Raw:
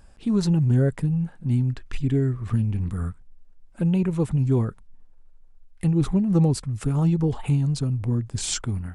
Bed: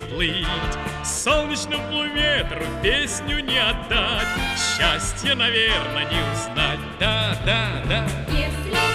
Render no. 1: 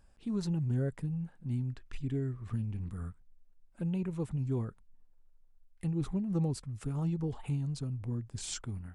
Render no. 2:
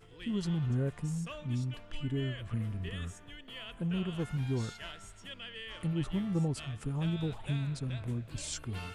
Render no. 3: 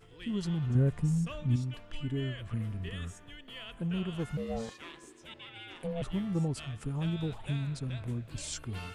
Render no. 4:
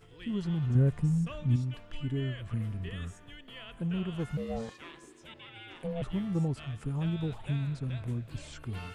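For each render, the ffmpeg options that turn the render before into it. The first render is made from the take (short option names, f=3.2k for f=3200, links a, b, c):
-af "volume=-12dB"
-filter_complex "[1:a]volume=-26dB[a];[0:a][a]amix=inputs=2:normalize=0"
-filter_complex "[0:a]asettb=1/sr,asplit=3[a][b][c];[a]atrim=end=0.754[d];[b]atrim=start=0.75:end=1.56,asetpts=PTS-STARTPTS,afade=t=in:d=0.004:c=qsin,afade=t=out:st=0.806:d=0.004:c=qsin,lowshelf=f=260:g=9[e];[c]atrim=start=1.556[f];[d][e]acrossfade=d=0.004:c1=hsin:c2=qsin[g];[g][f]acrossfade=d=0.004:c1=qsin:c2=hsin,asettb=1/sr,asplit=3[h][i][j];[h]atrim=end=4.374[k];[i]atrim=start=4.37:end=6.02,asetpts=PTS-STARTPTS,afade=t=in:d=0.004:c=qsin,afade=t=out:st=1.646:d=0.004:c=qsin,aeval=exprs='val(0)*sin(2*PI*340*n/s)':c=same[l];[j]atrim=start=6.016[m];[k][l]acrossfade=d=0.004:c1=hsin:c2=qsin[n];[n][m]acrossfade=d=0.004:c1=qsin:c2=hsin"
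-filter_complex "[0:a]acrossover=split=3000[a][b];[b]acompressor=threshold=-54dB:ratio=4:attack=1:release=60[c];[a][c]amix=inputs=2:normalize=0,equalizer=f=130:t=o:w=0.77:g=2"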